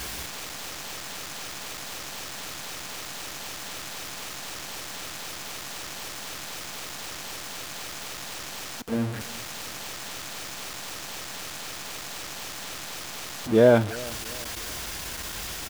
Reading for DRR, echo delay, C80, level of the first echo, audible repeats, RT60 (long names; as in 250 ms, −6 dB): no reverb audible, 345 ms, no reverb audible, −21.0 dB, 2, no reverb audible